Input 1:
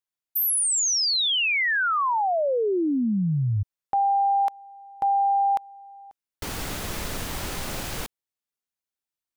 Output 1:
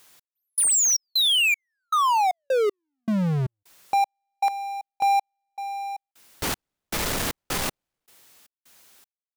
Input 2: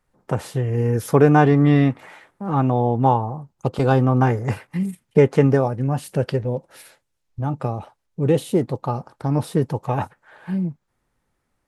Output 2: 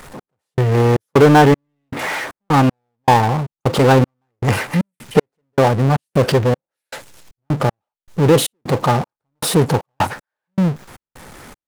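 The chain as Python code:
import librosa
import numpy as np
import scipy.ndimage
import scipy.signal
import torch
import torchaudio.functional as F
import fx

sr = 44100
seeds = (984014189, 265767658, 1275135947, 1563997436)

y = fx.power_curve(x, sr, exponent=0.5)
y = fx.step_gate(y, sr, bpm=78, pattern='x..xx.xx..xx.', floor_db=-60.0, edge_ms=4.5)
y = fx.low_shelf(y, sr, hz=120.0, db=-7.5)
y = y * 10.0 ** (1.0 / 20.0)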